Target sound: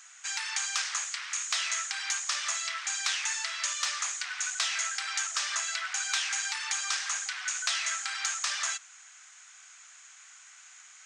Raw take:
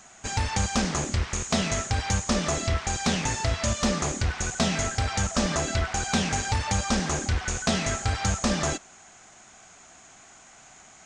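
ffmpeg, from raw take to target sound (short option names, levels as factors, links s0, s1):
-af "highpass=f=1300:w=0.5412,highpass=f=1300:w=1.3066"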